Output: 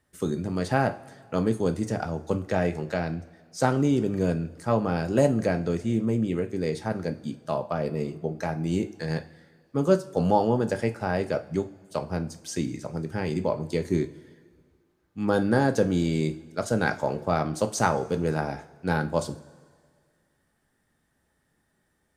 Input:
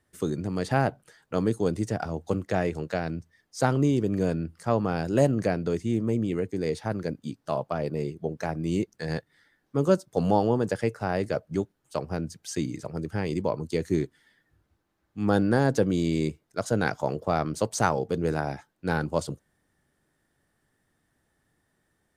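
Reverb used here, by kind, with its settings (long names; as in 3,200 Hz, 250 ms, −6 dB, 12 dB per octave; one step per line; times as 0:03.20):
coupled-rooms reverb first 0.32 s, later 1.9 s, from −18 dB, DRR 6 dB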